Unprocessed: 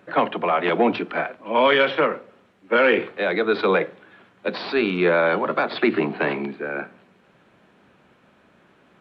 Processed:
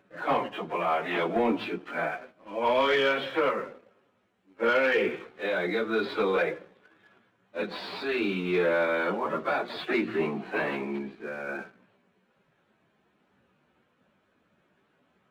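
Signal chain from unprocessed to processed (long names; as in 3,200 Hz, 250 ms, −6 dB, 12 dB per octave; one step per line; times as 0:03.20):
time stretch by phase vocoder 1.7×
leveller curve on the samples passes 1
level −7.5 dB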